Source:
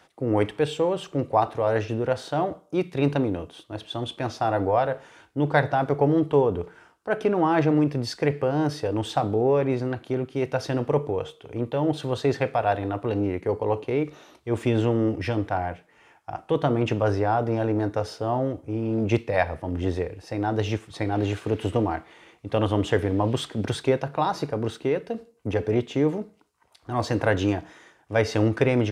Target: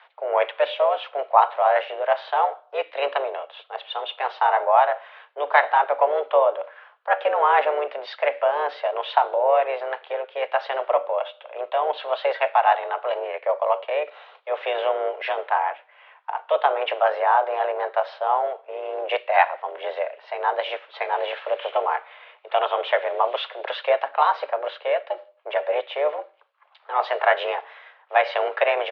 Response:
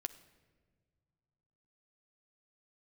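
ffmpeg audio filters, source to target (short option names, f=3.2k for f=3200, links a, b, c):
-filter_complex "[0:a]asplit=2[a][b];[b]asetrate=35002,aresample=44100,atempo=1.25992,volume=-7dB[c];[a][c]amix=inputs=2:normalize=0,highpass=f=440:t=q:w=0.5412,highpass=f=440:t=q:w=1.307,lowpass=f=3.4k:t=q:w=0.5176,lowpass=f=3.4k:t=q:w=0.7071,lowpass=f=3.4k:t=q:w=1.932,afreqshift=140,volume=5dB"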